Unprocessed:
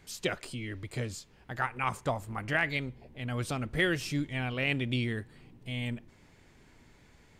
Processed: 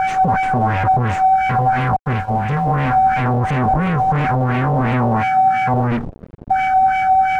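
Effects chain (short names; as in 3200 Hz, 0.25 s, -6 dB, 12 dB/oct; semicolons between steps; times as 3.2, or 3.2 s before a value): Chebyshev band-stop 260–6000 Hz, order 5; whine 760 Hz -43 dBFS; 1.96–2.67 expander -32 dBFS; 5.16–5.74 HPF 140 Hz 6 dB/oct; 5.85–6.51 spectral delete 610–9600 Hz; in parallel at -4 dB: fuzz box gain 53 dB, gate -59 dBFS; on the sum: LFO low-pass sine 2.9 Hz 680–2500 Hz; crossover distortion -47 dBFS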